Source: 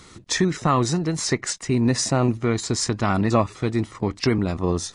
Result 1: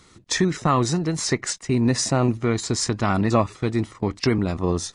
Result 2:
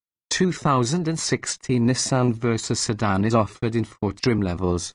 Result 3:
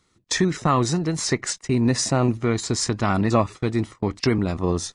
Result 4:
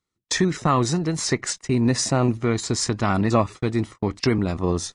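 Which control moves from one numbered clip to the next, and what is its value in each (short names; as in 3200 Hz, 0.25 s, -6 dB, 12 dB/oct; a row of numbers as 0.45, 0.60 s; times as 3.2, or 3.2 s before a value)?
gate, range: -6, -60, -19, -37 dB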